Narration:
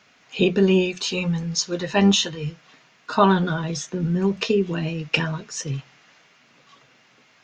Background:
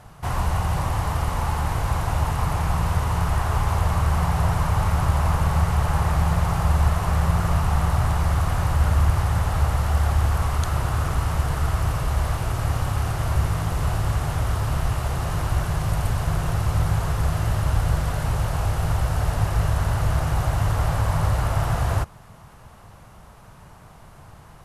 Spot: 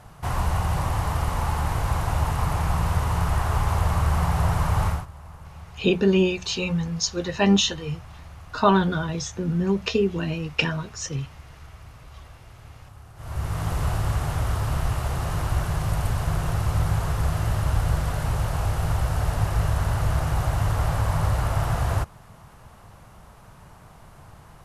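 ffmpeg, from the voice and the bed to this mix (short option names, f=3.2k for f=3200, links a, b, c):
-filter_complex "[0:a]adelay=5450,volume=-1.5dB[a];[1:a]volume=19.5dB,afade=t=out:st=4.86:d=0.2:silence=0.0891251,afade=t=in:st=13.15:d=0.54:silence=0.0944061[b];[a][b]amix=inputs=2:normalize=0"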